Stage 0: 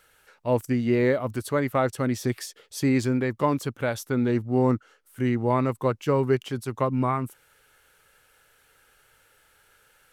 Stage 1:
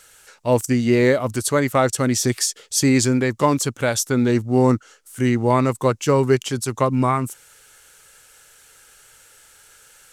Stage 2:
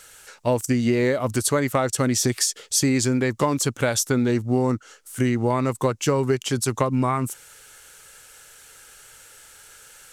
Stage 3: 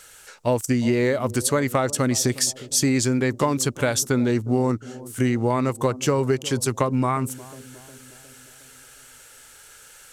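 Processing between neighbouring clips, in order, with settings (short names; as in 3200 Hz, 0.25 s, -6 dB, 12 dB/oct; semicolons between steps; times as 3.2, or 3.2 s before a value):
bell 7200 Hz +13.5 dB 1.4 oct; gain +5.5 dB
compressor, threshold -20 dBFS, peak gain reduction 9 dB; gain +2.5 dB
analogue delay 0.359 s, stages 2048, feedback 55%, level -18 dB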